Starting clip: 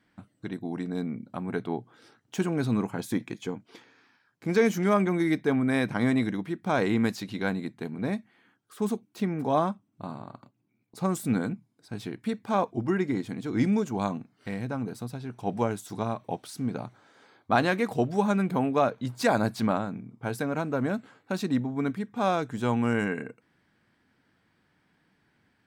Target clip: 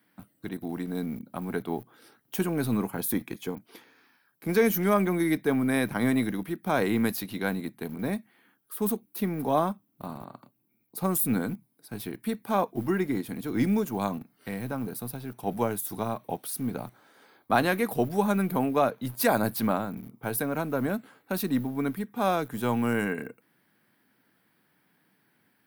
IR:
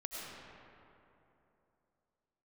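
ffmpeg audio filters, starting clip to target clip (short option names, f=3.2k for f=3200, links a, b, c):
-filter_complex "[0:a]highpass=f=40:p=1,acrossover=split=110|760|6000[a][b][c][d];[a]acrusher=bits=6:dc=4:mix=0:aa=0.000001[e];[e][b][c][d]amix=inputs=4:normalize=0,aexciter=amount=8.2:drive=6:freq=10k"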